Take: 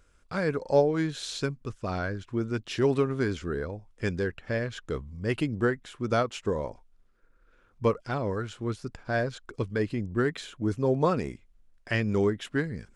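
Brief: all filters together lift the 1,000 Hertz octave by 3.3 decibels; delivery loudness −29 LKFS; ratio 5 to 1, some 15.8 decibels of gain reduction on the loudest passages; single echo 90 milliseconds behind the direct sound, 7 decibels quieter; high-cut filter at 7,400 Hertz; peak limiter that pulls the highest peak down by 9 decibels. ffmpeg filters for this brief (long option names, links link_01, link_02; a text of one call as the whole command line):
ffmpeg -i in.wav -af "lowpass=7400,equalizer=frequency=1000:width_type=o:gain=4.5,acompressor=threshold=-34dB:ratio=5,alimiter=level_in=6dB:limit=-24dB:level=0:latency=1,volume=-6dB,aecho=1:1:90:0.447,volume=11dB" out.wav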